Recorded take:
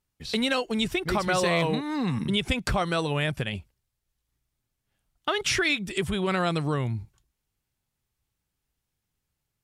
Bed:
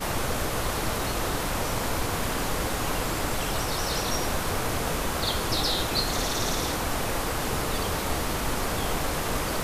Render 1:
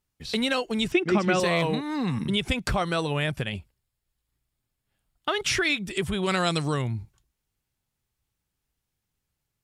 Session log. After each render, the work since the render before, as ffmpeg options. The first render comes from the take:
ffmpeg -i in.wav -filter_complex "[0:a]asettb=1/sr,asplit=3[link_01][link_02][link_03];[link_01]atrim=end=0.924[link_04];[link_02]atrim=start=0.92:end=1.4,asetpts=PTS-STARTPTS,afade=type=in:duration=0.004:curve=qsin,afade=type=out:start_time=0.476:duration=0.004:curve=qsin,highpass=160,equalizer=frequency=200:width_type=q:width=4:gain=10,equalizer=frequency=340:width_type=q:width=4:gain=8,equalizer=frequency=950:width_type=q:width=4:gain=-4,equalizer=frequency=2600:width_type=q:width=4:gain=6,equalizer=frequency=4200:width_type=q:width=4:gain=-9,lowpass=frequency=7200:width=0.5412,lowpass=frequency=7200:width=1.3066[link_05];[link_03]atrim=start=1.396[link_06];[link_04][link_05]acrossfade=duration=0.004:curve1=hsin:curve2=qsin[link_07];[link_07][link_06]acrossfade=duration=0.004:curve1=qsin:curve2=hsin,asettb=1/sr,asplit=3[link_08][link_09][link_10];[link_08]atrim=end=3.574[link_11];[link_09]atrim=start=3.57:end=5.29,asetpts=PTS-STARTPTS,afade=type=in:duration=0.004:curve=qsin,afade=type=out:start_time=1.716:duration=0.004:curve=qsin,bandreject=frequency=6000:width=9.1[link_12];[link_10]atrim=start=5.286[link_13];[link_11][link_12]acrossfade=duration=0.004:curve1=hsin:curve2=qsin[link_14];[link_14][link_13]acrossfade=duration=0.004:curve1=qsin:curve2=hsin,asettb=1/sr,asplit=3[link_15][link_16][link_17];[link_15]atrim=end=6.234[link_18];[link_16]atrim=start=6.23:end=6.82,asetpts=PTS-STARTPTS,afade=type=in:duration=0.004:curve=qsin,afade=type=out:start_time=0.586:duration=0.004:curve=qsin,equalizer=frequency=6500:width_type=o:width=1.6:gain=12.5[link_19];[link_17]atrim=start=6.816[link_20];[link_18][link_19]acrossfade=duration=0.004:curve1=hsin:curve2=qsin[link_21];[link_21][link_20]acrossfade=duration=0.004:curve1=qsin:curve2=hsin" out.wav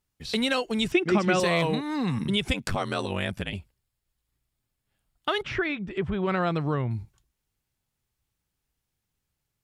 ffmpeg -i in.wav -filter_complex "[0:a]asettb=1/sr,asplit=3[link_01][link_02][link_03];[link_01]atrim=end=2.534[link_04];[link_02]atrim=start=2.53:end=3.53,asetpts=PTS-STARTPTS,afade=type=in:duration=0.004:curve=qsin,afade=type=out:start_time=0.996:duration=0.004:curve=qsin,aeval=exprs='val(0)*sin(2*PI*47*n/s)':channel_layout=same[link_05];[link_03]atrim=start=3.526[link_06];[link_04][link_05]acrossfade=duration=0.004:curve1=hsin:curve2=qsin[link_07];[link_07][link_06]acrossfade=duration=0.004:curve1=qsin:curve2=hsin,asettb=1/sr,asplit=3[link_08][link_09][link_10];[link_08]atrim=end=5.424[link_11];[link_09]atrim=start=5.42:end=6.91,asetpts=PTS-STARTPTS,afade=type=in:duration=0.004:curve=qsin,afade=type=out:start_time=1.486:duration=0.004:curve=qsin,lowpass=1700[link_12];[link_10]atrim=start=6.906[link_13];[link_11][link_12]acrossfade=duration=0.004:curve1=hsin:curve2=qsin[link_14];[link_14][link_13]acrossfade=duration=0.004:curve1=qsin:curve2=hsin" out.wav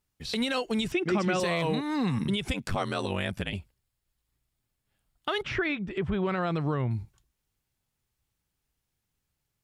ffmpeg -i in.wav -af "alimiter=limit=-18.5dB:level=0:latency=1:release=55" out.wav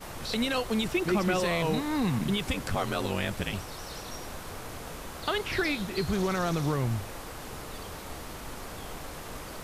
ffmpeg -i in.wav -i bed.wav -filter_complex "[1:a]volume=-12.5dB[link_01];[0:a][link_01]amix=inputs=2:normalize=0" out.wav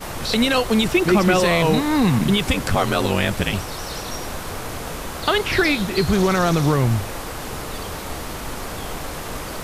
ffmpeg -i in.wav -af "volume=10.5dB" out.wav

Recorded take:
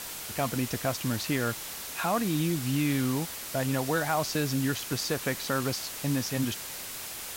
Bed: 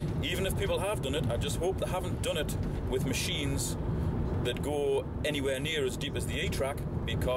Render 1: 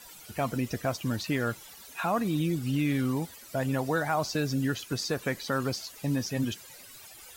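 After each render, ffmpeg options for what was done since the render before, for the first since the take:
ffmpeg -i in.wav -af "afftdn=noise_reduction=15:noise_floor=-39" out.wav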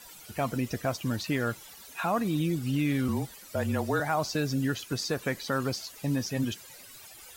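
ffmpeg -i in.wav -filter_complex "[0:a]asettb=1/sr,asplit=3[link_01][link_02][link_03];[link_01]atrim=end=3.084[link_04];[link_02]atrim=start=3.08:end=4,asetpts=PTS-STARTPTS,afade=type=in:duration=0.004:curve=qsin,afade=type=out:start_time=0.916:duration=0.004:curve=qsin,afreqshift=-33[link_05];[link_03]atrim=start=3.996[link_06];[link_04][link_05]acrossfade=duration=0.004:curve1=hsin:curve2=qsin[link_07];[link_07][link_06]acrossfade=duration=0.004:curve1=qsin:curve2=hsin" out.wav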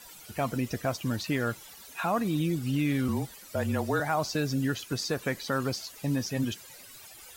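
ffmpeg -i in.wav -af anull out.wav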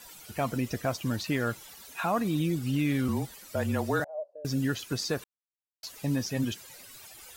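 ffmpeg -i in.wav -filter_complex "[0:a]asettb=1/sr,asplit=3[link_01][link_02][link_03];[link_01]atrim=end=4.044[link_04];[link_02]atrim=start=4.04:end=4.45,asetpts=PTS-STARTPTS,afade=type=in:duration=0.004:curve=qsin,afade=type=out:start_time=0.406:duration=0.004:curve=qsin,asuperpass=centerf=570:order=4:qfactor=5.7[link_05];[link_03]atrim=start=4.446[link_06];[link_04][link_05]acrossfade=duration=0.004:curve1=hsin:curve2=qsin[link_07];[link_07][link_06]acrossfade=duration=0.004:curve1=qsin:curve2=hsin,asplit=3[link_08][link_09][link_10];[link_08]atrim=end=5.24,asetpts=PTS-STARTPTS,afade=type=out:start_time=5.236:duration=0.004:curve=hsin[link_11];[link_09]atrim=start=5.24:end=5.83,asetpts=PTS-STARTPTS,volume=0[link_12];[link_10]atrim=start=5.83,asetpts=PTS-STARTPTS,afade=type=in:duration=0.004:curve=hsin[link_13];[link_11][link_12][link_13]concat=n=3:v=0:a=1" out.wav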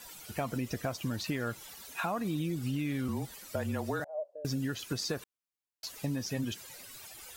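ffmpeg -i in.wav -af "acompressor=threshold=-30dB:ratio=6" out.wav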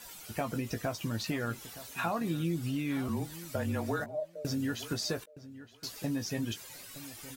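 ffmpeg -i in.wav -filter_complex "[0:a]asplit=2[link_01][link_02];[link_02]adelay=18,volume=-8dB[link_03];[link_01][link_03]amix=inputs=2:normalize=0,asplit=2[link_04][link_05];[link_05]adelay=918,lowpass=frequency=3100:poles=1,volume=-15.5dB,asplit=2[link_06][link_07];[link_07]adelay=918,lowpass=frequency=3100:poles=1,volume=0.17[link_08];[link_04][link_06][link_08]amix=inputs=3:normalize=0" out.wav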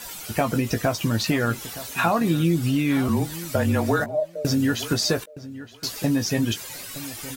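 ffmpeg -i in.wav -af "volume=11.5dB" out.wav

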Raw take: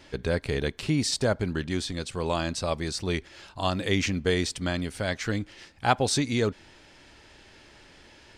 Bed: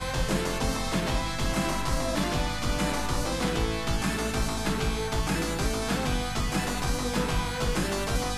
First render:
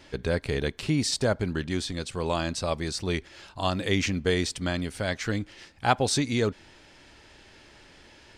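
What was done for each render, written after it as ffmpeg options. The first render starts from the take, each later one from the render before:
ffmpeg -i in.wav -af anull out.wav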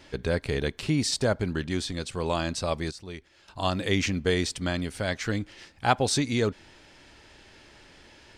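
ffmpeg -i in.wav -filter_complex "[0:a]asplit=3[link_01][link_02][link_03];[link_01]atrim=end=2.912[link_04];[link_02]atrim=start=2.908:end=3.482,asetpts=PTS-STARTPTS,volume=-11.5dB[link_05];[link_03]atrim=start=3.478[link_06];[link_04][link_05]acrossfade=duration=0.004:curve1=hsin:curve2=hsin[link_07];[link_07][link_06]acrossfade=duration=0.004:curve1=hsin:curve2=hsin" out.wav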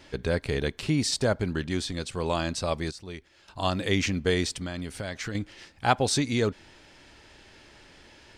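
ffmpeg -i in.wav -filter_complex "[0:a]asettb=1/sr,asplit=3[link_01][link_02][link_03];[link_01]atrim=end=4.534[link_04];[link_02]atrim=start=4.53:end=5.35,asetpts=PTS-STARTPTS,afade=type=in:duration=0.004:curve=qsin,afade=type=out:start_time=0.816:duration=0.004:curve=qsin,acompressor=threshold=-29dB:ratio=6:attack=3.2:release=140:knee=1:detection=peak[link_05];[link_03]atrim=start=5.346[link_06];[link_04][link_05]acrossfade=duration=0.004:curve1=hsin:curve2=qsin[link_07];[link_07][link_06]acrossfade=duration=0.004:curve1=qsin:curve2=hsin" out.wav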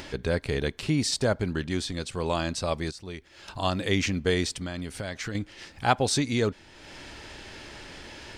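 ffmpeg -i in.wav -af "acompressor=mode=upward:threshold=-33dB:ratio=2.5" out.wav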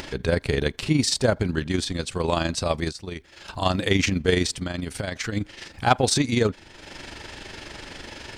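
ffmpeg -i in.wav -af "aeval=exprs='0.531*sin(PI/2*1.41*val(0)/0.531)':channel_layout=same,tremolo=f=24:d=0.571" out.wav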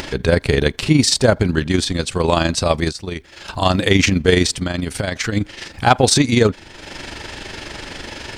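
ffmpeg -i in.wav -af "volume=7.5dB,alimiter=limit=-1dB:level=0:latency=1" out.wav

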